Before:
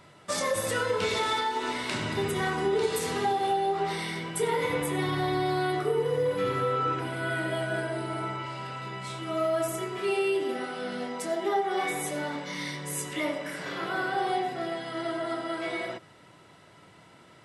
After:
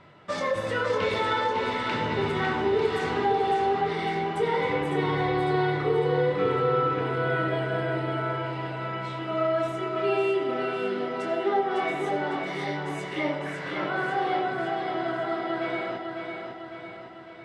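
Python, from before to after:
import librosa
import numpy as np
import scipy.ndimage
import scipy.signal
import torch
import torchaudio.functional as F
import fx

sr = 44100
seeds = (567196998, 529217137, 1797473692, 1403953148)

y = scipy.signal.sosfilt(scipy.signal.butter(2, 3100.0, 'lowpass', fs=sr, output='sos'), x)
y = fx.echo_feedback(y, sr, ms=553, feedback_pct=54, wet_db=-5.5)
y = y * librosa.db_to_amplitude(1.5)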